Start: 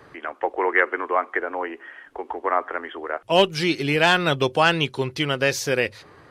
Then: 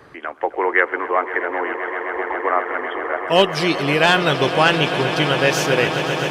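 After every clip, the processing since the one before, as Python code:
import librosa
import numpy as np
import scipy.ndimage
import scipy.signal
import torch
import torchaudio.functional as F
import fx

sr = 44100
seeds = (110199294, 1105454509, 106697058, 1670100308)

y = fx.echo_swell(x, sr, ms=130, loudest=8, wet_db=-14.0)
y = y * librosa.db_to_amplitude(2.5)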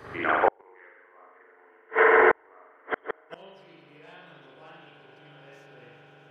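y = fx.rev_spring(x, sr, rt60_s=1.2, pass_ms=(41,), chirp_ms=50, drr_db=-8.0)
y = fx.gate_flip(y, sr, shuts_db=-5.0, range_db=-41)
y = y * librosa.db_to_amplitude(-1.5)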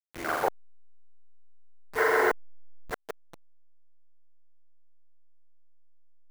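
y = fx.delta_hold(x, sr, step_db=-27.5)
y = y * librosa.db_to_amplitude(-5.5)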